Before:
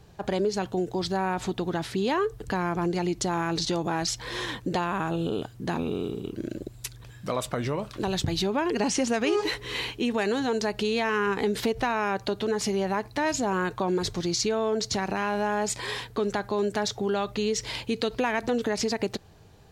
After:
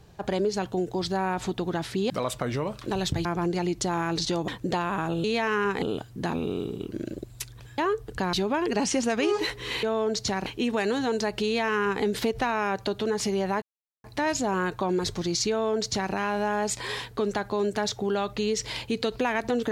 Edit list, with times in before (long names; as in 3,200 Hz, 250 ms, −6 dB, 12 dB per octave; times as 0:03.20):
0:02.10–0:02.65: swap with 0:07.22–0:08.37
0:03.88–0:04.50: remove
0:10.86–0:11.44: duplicate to 0:05.26
0:13.03: splice in silence 0.42 s
0:14.49–0:15.12: duplicate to 0:09.87